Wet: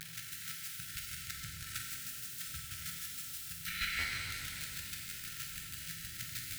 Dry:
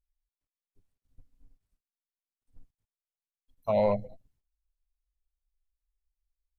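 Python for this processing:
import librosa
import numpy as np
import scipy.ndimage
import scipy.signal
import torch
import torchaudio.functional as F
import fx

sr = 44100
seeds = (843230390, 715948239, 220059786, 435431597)

p1 = x + 0.5 * 10.0 ** (-40.0 / 20.0) * np.sign(x)
p2 = fx.brickwall_bandstop(p1, sr, low_hz=160.0, high_hz=1300.0)
p3 = fx.high_shelf(p2, sr, hz=3500.0, db=-6.5)
p4 = fx.spec_gate(p3, sr, threshold_db=-20, keep='weak')
p5 = fx.rider(p4, sr, range_db=10, speed_s=0.5)
p6 = p4 + (p5 * 10.0 ** (-2.0 / 20.0))
p7 = fx.room_flutter(p6, sr, wall_m=7.3, rt60_s=0.75)
p8 = fx.chopper(p7, sr, hz=6.3, depth_pct=65, duty_pct=25)
p9 = fx.buffer_glitch(p8, sr, at_s=(2.65, 3.98), block=512, repeats=4)
p10 = fx.rev_shimmer(p9, sr, seeds[0], rt60_s=2.7, semitones=12, shimmer_db=-8, drr_db=-1.0)
y = p10 * 10.0 ** (11.5 / 20.0)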